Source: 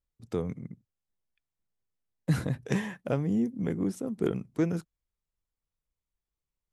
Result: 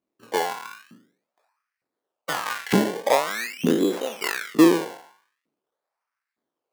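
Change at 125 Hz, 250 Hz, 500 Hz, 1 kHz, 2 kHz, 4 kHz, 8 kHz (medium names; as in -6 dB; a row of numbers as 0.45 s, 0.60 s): -4.0 dB, +7.0 dB, +10.0 dB, +18.5 dB, +14.0 dB, +18.5 dB, +15.5 dB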